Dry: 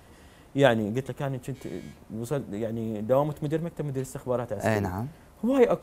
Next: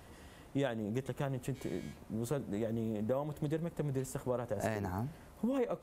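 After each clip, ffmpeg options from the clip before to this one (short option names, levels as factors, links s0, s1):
-af "acompressor=threshold=0.0398:ratio=10,volume=0.75"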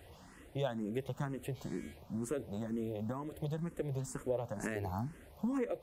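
-filter_complex "[0:a]asplit=2[s0][s1];[s1]afreqshift=2.1[s2];[s0][s2]amix=inputs=2:normalize=1,volume=1.19"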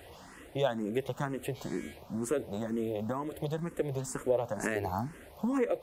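-af "bass=f=250:g=-7,treble=f=4000:g=-1,volume=2.37"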